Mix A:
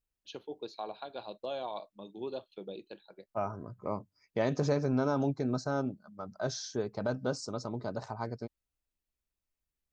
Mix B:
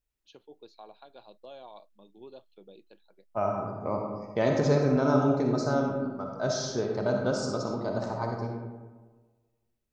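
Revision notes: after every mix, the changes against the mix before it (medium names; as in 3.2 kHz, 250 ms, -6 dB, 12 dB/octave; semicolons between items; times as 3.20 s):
first voice -9.0 dB; reverb: on, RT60 1.4 s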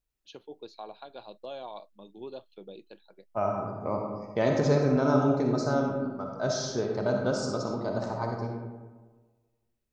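first voice +6.5 dB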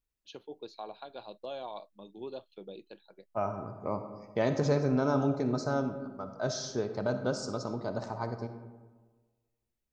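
second voice: send -9.0 dB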